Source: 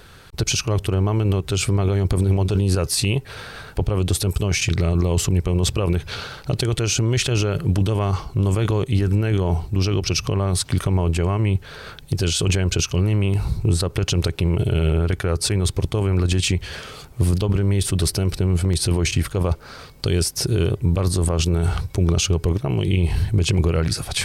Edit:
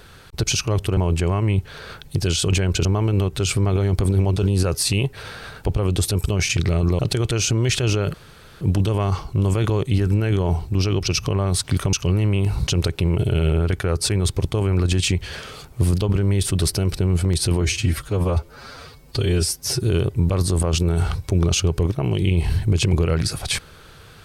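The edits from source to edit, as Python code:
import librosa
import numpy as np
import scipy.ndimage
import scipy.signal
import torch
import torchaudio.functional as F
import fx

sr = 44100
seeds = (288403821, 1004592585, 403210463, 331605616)

y = fx.edit(x, sr, fx.cut(start_s=5.11, length_s=1.36),
    fx.insert_room_tone(at_s=7.62, length_s=0.47),
    fx.move(start_s=10.94, length_s=1.88, to_s=0.97),
    fx.cut(start_s=13.56, length_s=0.51),
    fx.stretch_span(start_s=19.01, length_s=1.48, factor=1.5), tone=tone)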